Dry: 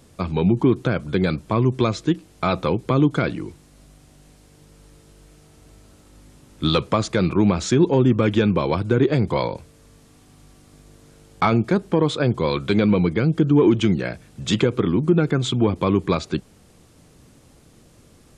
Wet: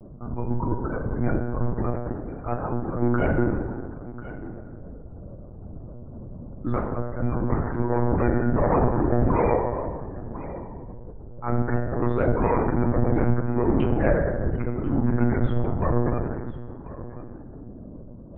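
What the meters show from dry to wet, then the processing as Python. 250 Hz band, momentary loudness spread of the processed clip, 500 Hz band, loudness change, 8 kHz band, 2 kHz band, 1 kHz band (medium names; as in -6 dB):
-5.5 dB, 19 LU, -4.0 dB, -5.0 dB, under -40 dB, -5.5 dB, -2.0 dB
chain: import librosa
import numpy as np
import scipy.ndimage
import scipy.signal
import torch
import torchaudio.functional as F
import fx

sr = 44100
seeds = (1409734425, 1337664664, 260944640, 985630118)

p1 = scipy.signal.sosfilt(scipy.signal.butter(4, 1800.0, 'lowpass', fs=sr, output='sos'), x)
p2 = fx.env_lowpass(p1, sr, base_hz=510.0, full_db=-12.5)
p3 = fx.peak_eq(p2, sr, hz=390.0, db=-7.0, octaves=0.28)
p4 = fx.auto_swell(p3, sr, attack_ms=412.0)
p5 = fx.over_compress(p4, sr, threshold_db=-28.0, ratio=-0.5)
p6 = p4 + (p5 * 10.0 ** (-0.5 / 20.0))
p7 = np.clip(10.0 ** (21.5 / 20.0) * p6, -1.0, 1.0) / 10.0 ** (21.5 / 20.0)
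p8 = fx.spec_topn(p7, sr, count=64)
p9 = p8 + 10.0 ** (-15.5 / 20.0) * np.pad(p8, (int(1041 * sr / 1000.0), 0))[:len(p8)]
p10 = fx.rev_fdn(p9, sr, rt60_s=1.7, lf_ratio=1.25, hf_ratio=0.4, size_ms=10.0, drr_db=0.0)
y = fx.lpc_monotone(p10, sr, seeds[0], pitch_hz=120.0, order=10)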